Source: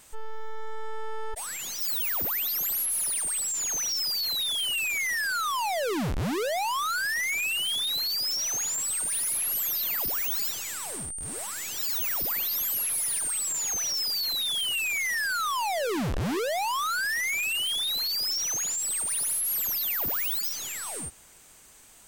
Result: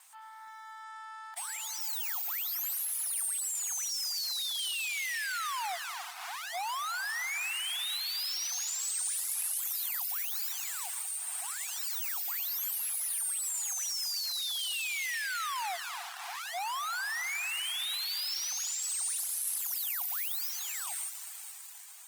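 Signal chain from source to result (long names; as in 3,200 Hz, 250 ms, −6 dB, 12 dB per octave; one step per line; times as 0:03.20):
in parallel at −11 dB: comparator with hysteresis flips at −38.5 dBFS
on the sum: dynamic equaliser 8,800 Hz, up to +5 dB, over −43 dBFS, Q 5.3
linear-phase brick-wall high-pass 680 Hz
downward compressor 2 to 1, threshold −38 dBFS, peak gain reduction 8.5 dB
on a send at −9.5 dB: high-shelf EQ 2,200 Hz +7 dB + convolution reverb RT60 5.3 s, pre-delay 74 ms
on the sum: reverb reduction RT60 0.51 s
level −2.5 dB
Opus 24 kbit/s 48,000 Hz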